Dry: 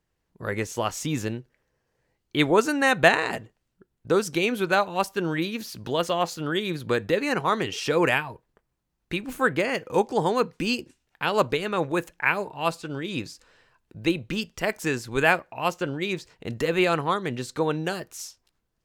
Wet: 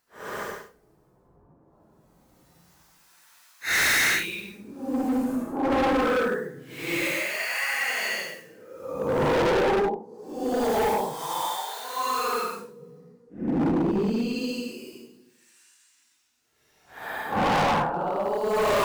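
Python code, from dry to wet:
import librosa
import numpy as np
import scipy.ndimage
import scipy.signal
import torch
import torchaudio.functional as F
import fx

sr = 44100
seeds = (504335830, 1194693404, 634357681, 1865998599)

p1 = fx.block_float(x, sr, bits=5)
p2 = fx.recorder_agc(p1, sr, target_db=-12.5, rise_db_per_s=61.0, max_gain_db=30)
p3 = fx.highpass(p2, sr, hz=250.0, slope=6)
p4 = fx.peak_eq(p3, sr, hz=2800.0, db=-4.5, octaves=1.2)
p5 = fx.hum_notches(p4, sr, base_hz=60, count=8)
p6 = fx.transient(p5, sr, attack_db=7, sustain_db=-8)
p7 = fx.level_steps(p6, sr, step_db=17)
p8 = p6 + (p7 * 10.0 ** (3.0 / 20.0))
p9 = fx.harmonic_tremolo(p8, sr, hz=1.6, depth_pct=100, crossover_hz=1000.0)
p10 = fx.paulstretch(p9, sr, seeds[0], factor=6.5, window_s=0.1, from_s=8.51)
y = np.clip(10.0 ** (20.5 / 20.0) * p10, -1.0, 1.0) / 10.0 ** (20.5 / 20.0)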